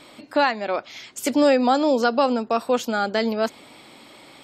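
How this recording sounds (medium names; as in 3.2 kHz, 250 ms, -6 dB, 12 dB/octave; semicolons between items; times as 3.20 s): noise floor -48 dBFS; spectral tilt -2.0 dB/octave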